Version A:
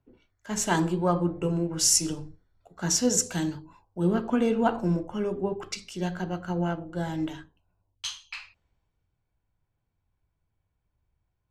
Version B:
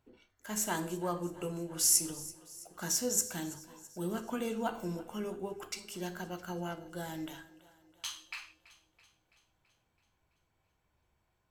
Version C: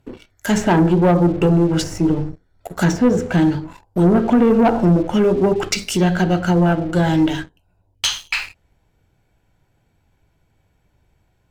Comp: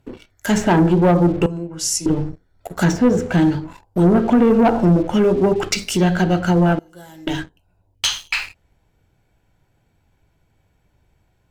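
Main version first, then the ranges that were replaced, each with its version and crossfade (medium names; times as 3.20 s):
C
1.46–2.06 s: from A
6.79–7.27 s: from B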